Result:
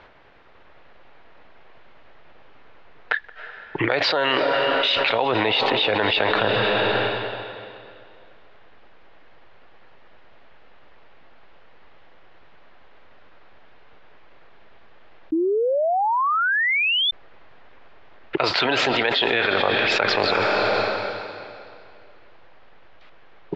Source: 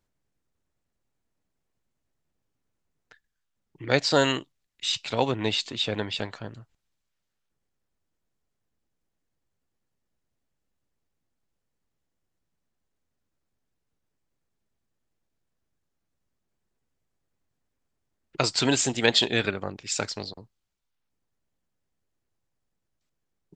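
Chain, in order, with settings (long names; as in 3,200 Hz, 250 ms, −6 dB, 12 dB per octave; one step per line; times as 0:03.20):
low-pass filter 4,700 Hz 24 dB per octave
three-way crossover with the lows and the highs turned down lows −23 dB, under 460 Hz, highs −24 dB, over 3,300 Hz
tape delay 175 ms, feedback 72%, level −22 dB, low-pass 1,200 Hz
convolution reverb RT60 2.3 s, pre-delay 234 ms, DRR 13.5 dB
sound drawn into the spectrogram rise, 0:15.32–0:17.11, 310–3,600 Hz −20 dBFS
low-shelf EQ 200 Hz +8.5 dB
envelope flattener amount 100%
level −3 dB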